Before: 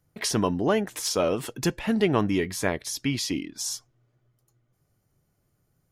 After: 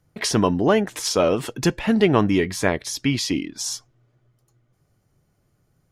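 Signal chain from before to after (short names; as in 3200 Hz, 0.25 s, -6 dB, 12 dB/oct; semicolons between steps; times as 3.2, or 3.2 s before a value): high shelf 11000 Hz -11 dB; gain +5.5 dB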